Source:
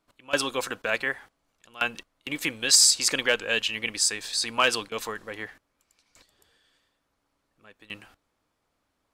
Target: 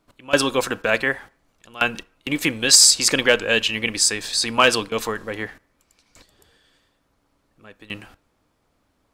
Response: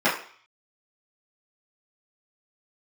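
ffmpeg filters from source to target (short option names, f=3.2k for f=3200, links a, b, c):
-filter_complex "[0:a]lowshelf=f=490:g=6.5,asplit=2[a][b];[1:a]atrim=start_sample=2205,adelay=24[c];[b][c]afir=irnorm=-1:irlink=0,volume=-38.5dB[d];[a][d]amix=inputs=2:normalize=0,volume=5.5dB"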